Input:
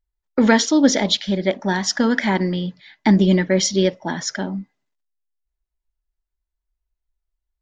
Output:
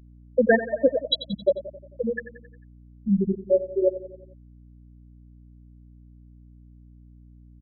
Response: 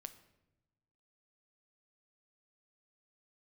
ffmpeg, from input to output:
-filter_complex "[0:a]aecho=1:1:1.8:0.68[a];[1:a]atrim=start_sample=2205,atrim=end_sample=3969,asetrate=38367,aresample=44100[b];[a][b]afir=irnorm=-1:irlink=0,afftfilt=real='re*gte(hypot(re,im),0.631)':imag='im*gte(hypot(re,im),0.631)':win_size=1024:overlap=0.75,aecho=1:1:89|178|267|356|445:0.2|0.108|0.0582|0.0314|0.017,asubboost=boost=10:cutoff=51,aeval=exprs='val(0)+0.00251*(sin(2*PI*60*n/s)+sin(2*PI*2*60*n/s)/2+sin(2*PI*3*60*n/s)/3+sin(2*PI*4*60*n/s)/4+sin(2*PI*5*60*n/s)/5)':c=same,volume=4dB"

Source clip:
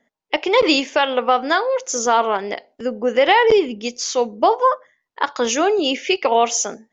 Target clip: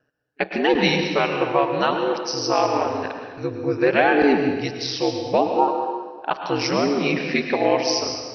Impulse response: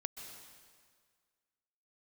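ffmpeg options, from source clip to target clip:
-filter_complex "[0:a]asetrate=36603,aresample=44100,aeval=exprs='val(0)*sin(2*PI*70*n/s)':c=same[a];[1:a]atrim=start_sample=2205,asetrate=52920,aresample=44100[b];[a][b]afir=irnorm=-1:irlink=0,volume=3.5dB"

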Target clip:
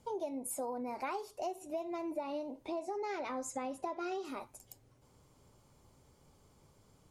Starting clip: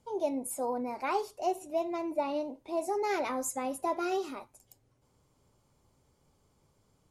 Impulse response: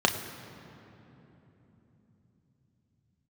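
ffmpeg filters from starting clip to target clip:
-filter_complex "[0:a]asettb=1/sr,asplit=3[a][b][c];[a]atrim=end=2.684[d];[b]atrim=start=2.68:end=4.25,asetpts=PTS-STARTPTS,afade=t=in:d=0.004:c=qsin,afade=t=out:st=1.566:d=0.004:c=qsin,lowpass=6.3k[e];[c]atrim=start=4.246[f];[d][e]acrossfade=d=0.004:c1=hsin:c2=qsin[g];[g][f]acrossfade=d=0.004:c1=qsin:c2=hsin,acompressor=threshold=-41dB:ratio=6,volume=4.5dB"

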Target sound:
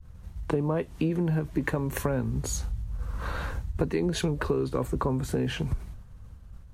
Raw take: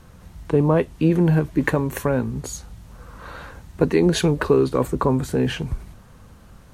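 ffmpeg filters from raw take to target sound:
-filter_complex "[0:a]acrossover=split=110[a][b];[a]dynaudnorm=f=250:g=13:m=8dB[c];[b]agate=range=-33dB:threshold=-40dB:ratio=3:detection=peak[d];[c][d]amix=inputs=2:normalize=0,acompressor=threshold=-29dB:ratio=4,volume=3dB"

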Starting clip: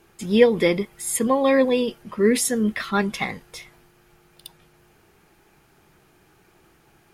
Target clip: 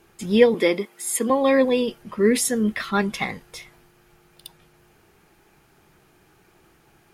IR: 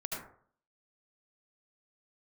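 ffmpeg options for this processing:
-filter_complex "[0:a]asettb=1/sr,asplit=3[a][b][c];[a]atrim=end=0.544[d];[b]atrim=start=0.54:end=1.3,asetpts=PTS-STARTPTS,afade=t=in:d=0.004:c=qsin,afade=t=out:st=0.756:d=0.004:c=qsin,highpass=f=220:w=0.5412,highpass=f=220:w=1.3066[e];[c]atrim=start=1.296[f];[d][e]acrossfade=d=0.004:c1=hsin:c2=qsin[g];[g][f]acrossfade=d=0.004:c1=qsin:c2=hsin"

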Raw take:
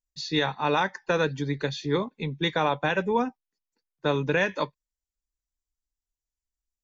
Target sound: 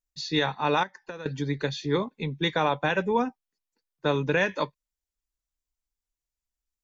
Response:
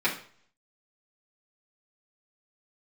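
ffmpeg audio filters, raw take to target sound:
-filter_complex "[0:a]asettb=1/sr,asplit=3[a][b][c];[a]atrim=end=0.834[d];[b]atrim=start=0.83:end=1.26,asetpts=PTS-STARTPTS,afade=t=in:d=0.004:c=qsin,afade=t=out:st=0.426:d=0.004:c=qsin,acompressor=threshold=-38dB:ratio=5[e];[c]atrim=start=1.256[f];[d][e]acrossfade=d=0.004:c1=hsin:c2=qsin[g];[g][f]acrossfade=d=0.004:c1=qsin:c2=hsin"

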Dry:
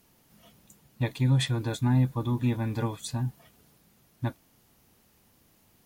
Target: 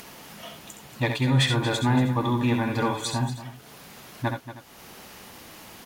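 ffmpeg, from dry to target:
-filter_complex "[0:a]acompressor=mode=upward:threshold=-40dB:ratio=2.5,asplit=2[a][b];[b]highpass=f=720:p=1,volume=14dB,asoftclip=type=tanh:threshold=-14dB[c];[a][c]amix=inputs=2:normalize=0,lowpass=f=3.8k:p=1,volume=-6dB,aecho=1:1:67|83|232|314:0.422|0.266|0.224|0.119,volume=3dB"

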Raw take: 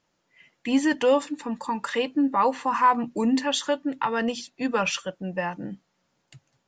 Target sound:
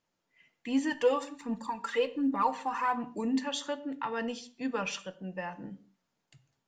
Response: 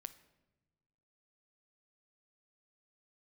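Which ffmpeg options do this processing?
-filter_complex "[0:a]asplit=3[a][b][c];[a]afade=t=out:st=0.89:d=0.02[d];[b]aphaser=in_gain=1:out_gain=1:delay=2.7:decay=0.59:speed=1.3:type=triangular,afade=t=in:st=0.89:d=0.02,afade=t=out:st=2.92:d=0.02[e];[c]afade=t=in:st=2.92:d=0.02[f];[d][e][f]amix=inputs=3:normalize=0[g];[1:a]atrim=start_sample=2205,afade=t=out:st=0.39:d=0.01,atrim=end_sample=17640,asetrate=70560,aresample=44100[h];[g][h]afir=irnorm=-1:irlink=0"

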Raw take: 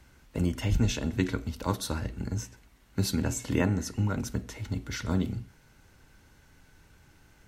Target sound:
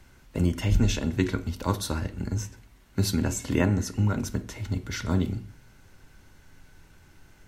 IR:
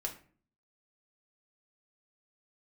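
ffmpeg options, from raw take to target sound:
-filter_complex "[0:a]asplit=2[a][b];[1:a]atrim=start_sample=2205,lowshelf=f=140:g=8[c];[b][c]afir=irnorm=-1:irlink=0,volume=-8.5dB[d];[a][d]amix=inputs=2:normalize=0"

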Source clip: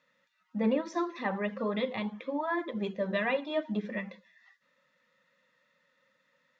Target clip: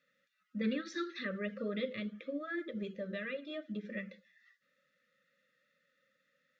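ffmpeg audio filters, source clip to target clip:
-filter_complex "[0:a]asettb=1/sr,asplit=3[a][b][c];[a]atrim=end=0.614[d];[b]atrim=start=0.61:end=1.25,asetpts=PTS-STARTPTS,afade=t=in:d=0.004:c=qsin,afade=t=out:st=0.636:d=0.004:c=qsin,equalizer=f=630:t=o:w=0.67:g=-11,equalizer=f=1.6k:t=o:w=0.67:g=8,equalizer=f=4k:t=o:w=0.67:g=11[e];[c]atrim=start=1.246[f];[d][e]acrossfade=d=0.004:c1=hsin:c2=qsin[g];[g][f]acrossfade=d=0.004:c1=qsin:c2=hsin,asettb=1/sr,asplit=3[h][i][j];[h]atrim=end=2.824[k];[i]atrim=start=2.82:end=3.91,asetpts=PTS-STARTPTS,afade=t=in:d=0.004:c=qsin,afade=t=out:st=1.086:d=0.004:c=qsin,acompressor=threshold=-32dB:ratio=3[l];[j]atrim=start=3.906[m];[k][l]acrossfade=d=0.004:c1=hsin:c2=qsin[n];[n][m]acrossfade=d=0.004:c1=qsin:c2=hsin,asuperstop=centerf=860:order=12:qfactor=1.5,volume=-5dB"

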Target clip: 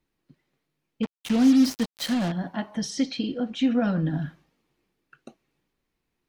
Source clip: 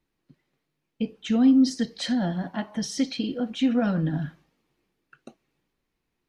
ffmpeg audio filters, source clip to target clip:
-filter_complex "[0:a]asettb=1/sr,asplit=3[a][b][c];[a]atrim=end=1.034[d];[b]atrim=start=1.03:end=2.32,asetpts=PTS-STARTPTS,afade=t=in:d=0.004:c=qsin,afade=t=out:st=1.286:d=0.004:c=qsin,acrusher=bits=4:mix=0:aa=0.5[e];[c]atrim=start=2.316[f];[d][e]acrossfade=d=0.004:c1=hsin:c2=qsin[g];[g][f]acrossfade=d=0.004:c1=qsin:c2=hsin,asettb=1/sr,asplit=3[h][i][j];[h]atrim=end=2.904[k];[i]atrim=start=2.9:end=4.06,asetpts=PTS-STARTPTS,afade=t=in:d=0.004:c=qsin,afade=t=out:st=1.156:d=0.004:c=qsin,lowpass=8.1k[l];[j]atrim=start=4.056[m];[k][l]acrossfade=d=0.004:c1=hsin:c2=qsin[n];[n][m]acrossfade=d=0.004:c1=qsin:c2=hsin"

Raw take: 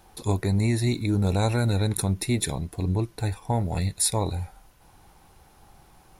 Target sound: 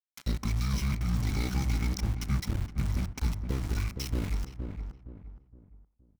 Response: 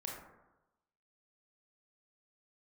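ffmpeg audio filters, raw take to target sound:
-filter_complex "[0:a]asetrate=24750,aresample=44100,atempo=1.7818,acrossover=split=1100|2500[a][b][c];[a]acompressor=threshold=-27dB:ratio=4[d];[b]acompressor=threshold=-51dB:ratio=4[e];[c]acompressor=threshold=-42dB:ratio=4[f];[d][e][f]amix=inputs=3:normalize=0,aeval=exprs='val(0)*gte(abs(val(0)),0.0188)':c=same,equalizer=f=500:t=o:w=0.83:g=-10,asplit=2[g][h];[h]adelay=467,lowpass=f=1.1k:p=1,volume=-6dB,asplit=2[i][j];[j]adelay=467,lowpass=f=1.1k:p=1,volume=0.37,asplit=2[k][l];[l]adelay=467,lowpass=f=1.1k:p=1,volume=0.37,asplit=2[m][n];[n]adelay=467,lowpass=f=1.1k:p=1,volume=0.37[o];[g][i][k][m][o]amix=inputs=5:normalize=0,asplit=2[p][q];[1:a]atrim=start_sample=2205[r];[q][r]afir=irnorm=-1:irlink=0,volume=-17dB[s];[p][s]amix=inputs=2:normalize=0"

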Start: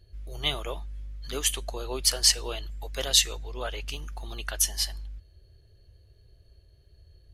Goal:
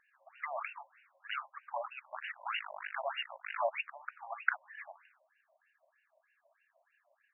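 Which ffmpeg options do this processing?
-filter_complex "[0:a]acompressor=threshold=-32dB:ratio=6,asettb=1/sr,asplit=3[a][b][c];[a]atrim=end=2.094[d];[b]atrim=start=2.09:end=3.69,asetpts=PTS-STARTPTS,afade=t=in:d=0.004:c=qsin,afade=t=out:st=1.596:d=0.004:c=qsin,acrusher=bits=7:dc=4:mix=0:aa=0.000001[e];[c]atrim=start=3.686[f];[d][e]acrossfade=d=0.004:c1=hsin:c2=qsin[g];[g][f]acrossfade=d=0.004:c1=qsin:c2=hsin,afftfilt=real='re*between(b*sr/1024,750*pow(2100/750,0.5+0.5*sin(2*PI*3.2*pts/sr))/1.41,750*pow(2100/750,0.5+0.5*sin(2*PI*3.2*pts/sr))*1.41)':imag='im*between(b*sr/1024,750*pow(2100/750,0.5+0.5*sin(2*PI*3.2*pts/sr))/1.41,750*pow(2100/750,0.5+0.5*sin(2*PI*3.2*pts/sr))*1.41)':win_size=1024:overlap=0.75,volume=10dB"

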